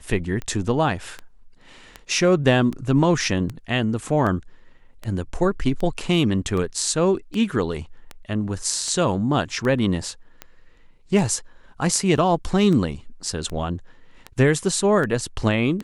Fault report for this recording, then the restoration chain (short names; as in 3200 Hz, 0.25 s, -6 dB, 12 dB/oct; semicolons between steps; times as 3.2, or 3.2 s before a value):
tick 78 rpm -17 dBFS
12.17–12.18 gap 7.4 ms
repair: de-click; interpolate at 12.17, 7.4 ms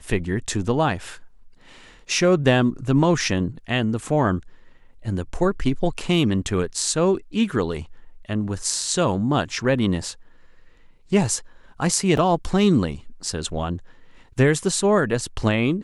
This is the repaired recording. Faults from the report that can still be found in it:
none